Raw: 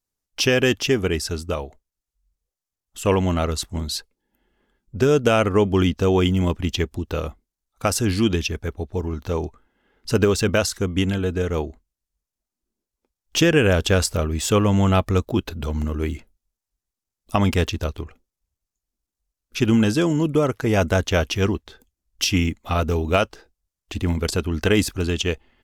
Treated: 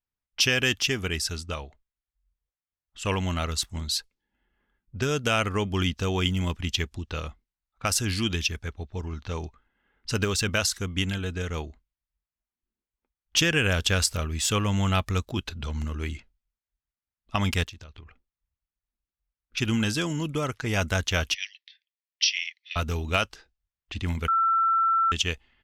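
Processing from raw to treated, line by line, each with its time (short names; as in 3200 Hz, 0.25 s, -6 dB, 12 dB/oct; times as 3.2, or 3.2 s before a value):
17.63–19.57 compressor 16:1, threshold -35 dBFS
21.34–22.76 Chebyshev band-pass 1800–5800 Hz, order 5
24.28–25.12 bleep 1340 Hz -15.5 dBFS
whole clip: passive tone stack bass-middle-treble 5-5-5; low-pass opened by the level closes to 2000 Hz, open at -33.5 dBFS; high shelf 6400 Hz -6 dB; gain +9 dB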